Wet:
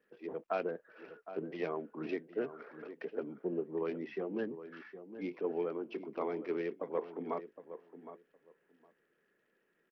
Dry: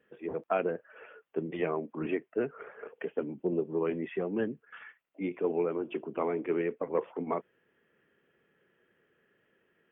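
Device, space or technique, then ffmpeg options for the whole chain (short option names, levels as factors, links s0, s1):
Bluetooth headset: -filter_complex "[0:a]highpass=170,asplit=2[s0][s1];[s1]adelay=763,lowpass=f=1400:p=1,volume=0.266,asplit=2[s2][s3];[s3]adelay=763,lowpass=f=1400:p=1,volume=0.17[s4];[s0][s2][s4]amix=inputs=3:normalize=0,aresample=8000,aresample=44100,volume=0.531" -ar 44100 -c:a sbc -b:a 64k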